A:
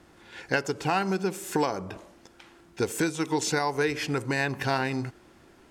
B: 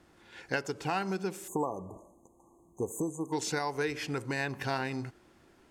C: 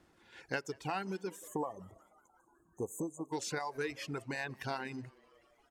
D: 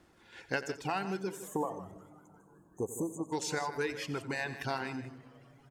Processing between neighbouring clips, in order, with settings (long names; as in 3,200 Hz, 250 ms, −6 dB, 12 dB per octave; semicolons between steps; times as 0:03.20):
time-frequency box erased 0:01.48–0:03.33, 1,200–6,200 Hz; level −6 dB
echo with shifted repeats 184 ms, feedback 59%, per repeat +110 Hz, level −17 dB; reverb reduction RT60 1.3 s; level −4.5 dB
multi-tap delay 89/157 ms −15/−13 dB; on a send at −21 dB: convolution reverb RT60 3.5 s, pre-delay 7 ms; on the sum: level +3 dB